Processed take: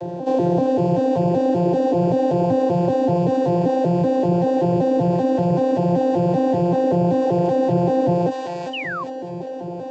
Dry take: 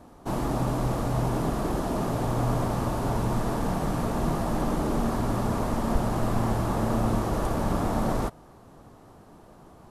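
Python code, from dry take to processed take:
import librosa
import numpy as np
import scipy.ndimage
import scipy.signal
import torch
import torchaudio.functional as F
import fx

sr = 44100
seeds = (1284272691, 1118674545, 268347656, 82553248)

p1 = fx.vocoder_arp(x, sr, chord='bare fifth', root=53, every_ms=192)
p2 = fx.echo_wet_highpass(p1, sr, ms=403, feedback_pct=35, hz=1400.0, wet_db=-5)
p3 = fx.rider(p2, sr, range_db=10, speed_s=0.5)
p4 = p2 + (p3 * librosa.db_to_amplitude(-2.5))
p5 = fx.low_shelf(p4, sr, hz=180.0, db=7.0)
p6 = fx.fixed_phaser(p5, sr, hz=520.0, stages=4)
p7 = fx.spec_paint(p6, sr, seeds[0], shape='fall', start_s=8.73, length_s=0.31, low_hz=1000.0, high_hz=3100.0, level_db=-45.0)
p8 = fx.air_absorb(p7, sr, metres=84.0)
p9 = fx.notch(p8, sr, hz=2100.0, q=11.0)
p10 = fx.env_flatten(p9, sr, amount_pct=50)
y = p10 * librosa.db_to_amplitude(8.5)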